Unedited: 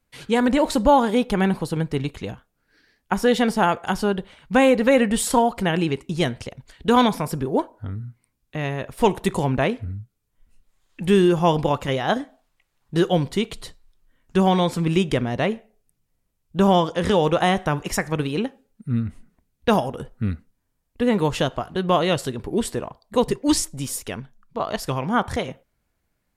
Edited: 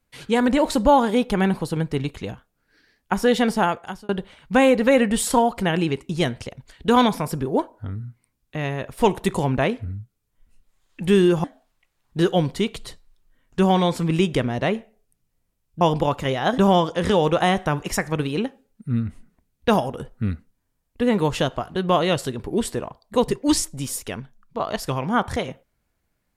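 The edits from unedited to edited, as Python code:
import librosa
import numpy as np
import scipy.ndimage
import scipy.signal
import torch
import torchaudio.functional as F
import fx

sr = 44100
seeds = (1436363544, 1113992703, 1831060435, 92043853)

y = fx.edit(x, sr, fx.fade_out_span(start_s=3.57, length_s=0.52),
    fx.move(start_s=11.44, length_s=0.77, to_s=16.58), tone=tone)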